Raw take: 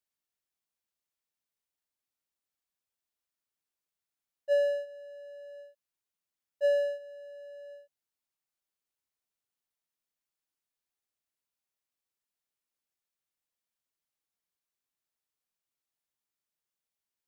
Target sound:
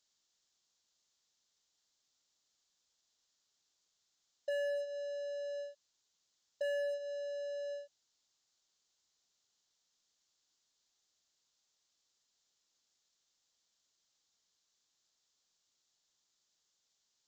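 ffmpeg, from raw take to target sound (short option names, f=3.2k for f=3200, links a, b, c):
-af "aexciter=amount=8.6:drive=2.6:freq=3.5k,aresample=16000,asoftclip=type=tanh:threshold=-26.5dB,aresample=44100,bass=f=250:g=-2,treble=f=4k:g=-9,asoftclip=type=hard:threshold=-33.5dB,acompressor=threshold=-42dB:ratio=6,volume=6.5dB"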